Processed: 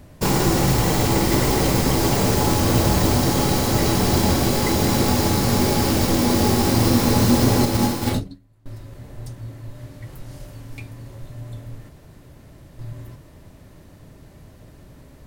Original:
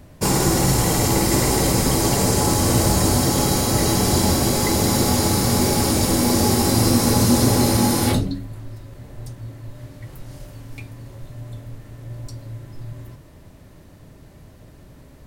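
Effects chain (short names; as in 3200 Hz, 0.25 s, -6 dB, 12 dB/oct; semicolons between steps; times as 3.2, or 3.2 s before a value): tracing distortion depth 0.14 ms; 7.65–8.66 upward expander 2.5:1, over -31 dBFS; 11.89–12.79 room tone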